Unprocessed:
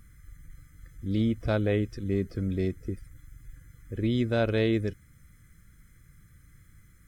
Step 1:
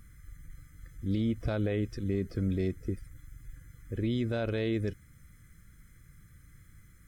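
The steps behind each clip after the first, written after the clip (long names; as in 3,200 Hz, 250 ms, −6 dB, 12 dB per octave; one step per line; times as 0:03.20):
brickwall limiter −21.5 dBFS, peak gain reduction 8 dB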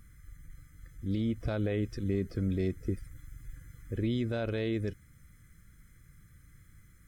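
speech leveller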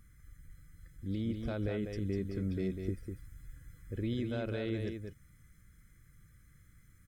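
single-tap delay 198 ms −6 dB
level −4.5 dB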